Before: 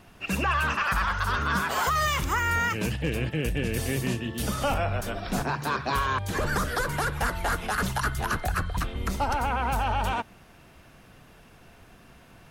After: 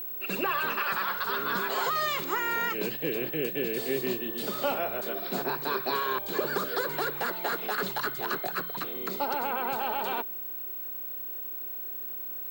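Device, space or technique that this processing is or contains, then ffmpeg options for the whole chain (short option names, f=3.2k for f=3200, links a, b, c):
old television with a line whistle: -filter_complex "[0:a]highpass=f=180:w=0.5412,highpass=f=180:w=1.3066,equalizer=f=210:t=q:w=4:g=-4,equalizer=f=390:t=q:w=4:g=10,equalizer=f=550:t=q:w=4:g=3,equalizer=f=4.1k:t=q:w=4:g=8,equalizer=f=6k:t=q:w=4:g=-8,lowpass=f=8.5k:w=0.5412,lowpass=f=8.5k:w=1.3066,aeval=exprs='val(0)+0.0316*sin(2*PI*15734*n/s)':c=same,asettb=1/sr,asplit=3[a][b][c];[a]atrim=end=6.244[d];[b]atrim=start=6.24:end=6.76,asetpts=PTS-STARTPTS,afade=t=in:d=0.004:c=qsin,afade=t=out:st=0.516:d=0.004:c=qsin,bandreject=f=1.9k:w=8.6[e];[c]atrim=start=6.756[f];[d][e]acrossfade=d=0.004:c1=hsin:c2=qsin[g];[g][f]acrossfade=d=0.004:c1=qsin:c2=hsin,volume=-4dB"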